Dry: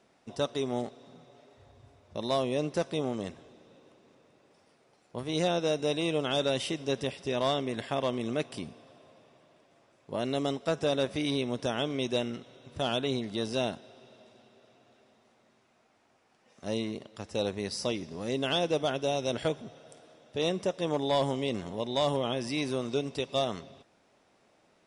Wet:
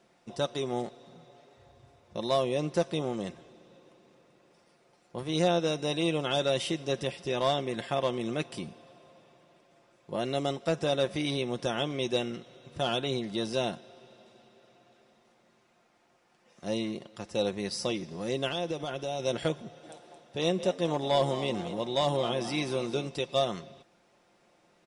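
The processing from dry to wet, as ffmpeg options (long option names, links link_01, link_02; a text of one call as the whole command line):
ffmpeg -i in.wav -filter_complex "[0:a]asettb=1/sr,asplit=3[link_01][link_02][link_03];[link_01]atrim=end=18.474[link_04];[link_02]atrim=start=18.47:end=19.2,asetpts=PTS-STARTPTS,afade=type=in:duration=0.004:curve=qsin,afade=type=out:start_time=0.726:duration=0.004:curve=qsin,acompressor=threshold=-30dB:ratio=5:attack=3.2:release=140:knee=1:detection=peak[link_05];[link_03]atrim=start=19.196[link_06];[link_04][link_05]acrossfade=duration=0.004:curve1=hsin:curve2=qsin[link_07];[link_07][link_06]acrossfade=duration=0.004:curve1=qsin:curve2=hsin,asplit=3[link_08][link_09][link_10];[link_08]afade=type=out:start_time=19.82:duration=0.02[link_11];[link_09]asplit=5[link_12][link_13][link_14][link_15][link_16];[link_13]adelay=220,afreqshift=77,volume=-12dB[link_17];[link_14]adelay=440,afreqshift=154,volume=-20.9dB[link_18];[link_15]adelay=660,afreqshift=231,volume=-29.7dB[link_19];[link_16]adelay=880,afreqshift=308,volume=-38.6dB[link_20];[link_12][link_17][link_18][link_19][link_20]amix=inputs=5:normalize=0,afade=type=in:start_time=19.82:duration=0.02,afade=type=out:start_time=23.07:duration=0.02[link_21];[link_10]afade=type=in:start_time=23.07:duration=0.02[link_22];[link_11][link_21][link_22]amix=inputs=3:normalize=0,aecho=1:1:5.7:0.43" out.wav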